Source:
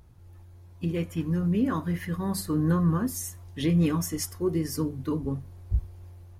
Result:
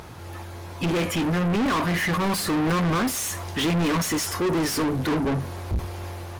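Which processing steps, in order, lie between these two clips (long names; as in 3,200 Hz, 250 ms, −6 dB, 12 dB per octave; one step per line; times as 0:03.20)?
mid-hump overdrive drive 37 dB, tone 4,400 Hz, clips at −14 dBFS
level −2.5 dB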